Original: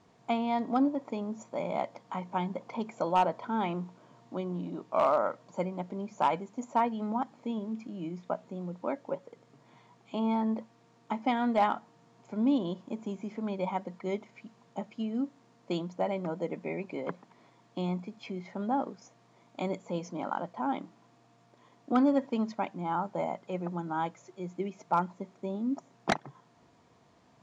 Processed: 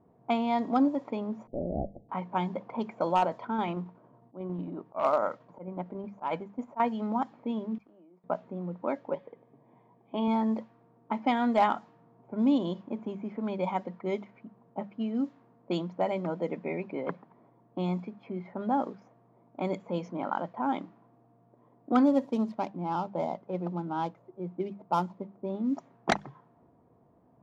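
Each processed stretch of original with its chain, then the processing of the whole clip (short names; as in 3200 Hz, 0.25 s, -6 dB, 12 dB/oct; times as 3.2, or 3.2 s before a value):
1.47–2.09 minimum comb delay 0.47 ms + steep low-pass 810 Hz 96 dB/oct
3.13–6.8 auto swell 0.14 s + tremolo saw down 11 Hz, depth 40%
7.78–8.24 gate -43 dBFS, range -11 dB + HPF 530 Hz + compressor 8:1, threshold -56 dBFS
9.14–10.28 LPF 4800 Hz + bell 2800 Hz +6.5 dB 1.1 oct + notch comb 1400 Hz
22.06–25.5 median filter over 15 samples + bell 1700 Hz -6 dB 1.2 oct
whole clip: low-pass opened by the level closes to 670 Hz, open at -25 dBFS; notches 50/100/150/200 Hz; gain +2 dB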